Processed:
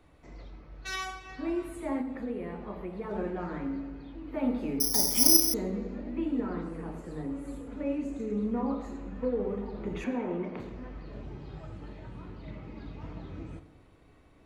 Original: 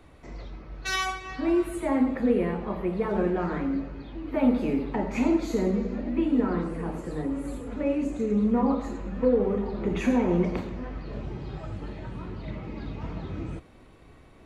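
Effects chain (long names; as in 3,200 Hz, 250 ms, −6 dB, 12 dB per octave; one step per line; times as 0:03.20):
0:02.01–0:03.11: downward compressor 2 to 1, threshold −27 dBFS, peak gain reduction 5.5 dB
0:10.04–0:10.60: three-way crossover with the lows and the highs turned down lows −18 dB, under 160 Hz, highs −17 dB, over 3,700 Hz
feedback delay network reverb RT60 1.6 s, low-frequency decay 0.95×, high-frequency decay 0.55×, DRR 11 dB
0:04.80–0:05.54: bad sample-rate conversion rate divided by 8×, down filtered, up zero stuff
level −7.5 dB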